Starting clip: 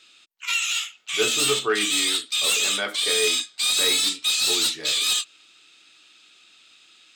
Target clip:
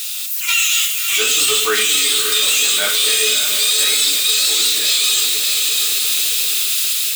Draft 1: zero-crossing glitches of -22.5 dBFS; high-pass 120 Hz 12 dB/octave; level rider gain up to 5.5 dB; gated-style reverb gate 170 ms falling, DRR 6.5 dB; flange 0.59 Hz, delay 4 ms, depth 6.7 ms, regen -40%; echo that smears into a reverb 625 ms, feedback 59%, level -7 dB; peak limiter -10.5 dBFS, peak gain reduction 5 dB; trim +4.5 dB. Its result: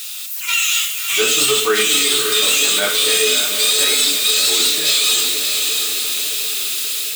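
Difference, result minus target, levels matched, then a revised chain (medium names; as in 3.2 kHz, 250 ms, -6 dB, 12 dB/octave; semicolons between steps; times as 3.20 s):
1 kHz band +2.5 dB
zero-crossing glitches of -22.5 dBFS; high-pass 120 Hz 12 dB/octave; tilt shelf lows -4.5 dB, about 1.1 kHz; level rider gain up to 5.5 dB; gated-style reverb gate 170 ms falling, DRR 6.5 dB; flange 0.59 Hz, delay 4 ms, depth 6.7 ms, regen -40%; echo that smears into a reverb 625 ms, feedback 59%, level -7 dB; peak limiter -10.5 dBFS, peak gain reduction 7 dB; trim +4.5 dB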